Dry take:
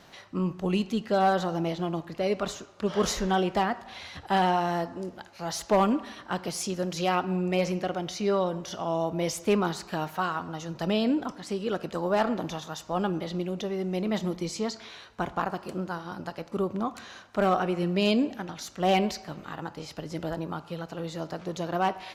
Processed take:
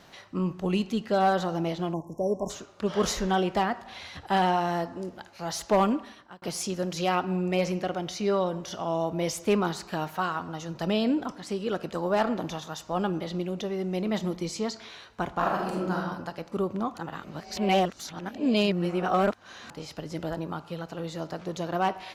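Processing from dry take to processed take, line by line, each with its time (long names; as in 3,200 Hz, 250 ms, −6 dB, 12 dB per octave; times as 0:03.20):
0:01.93–0:02.50: time-frequency box erased 1,100–5,300 Hz
0:05.86–0:06.42: fade out
0:15.36–0:15.99: thrown reverb, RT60 0.88 s, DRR −2.5 dB
0:16.98–0:19.70: reverse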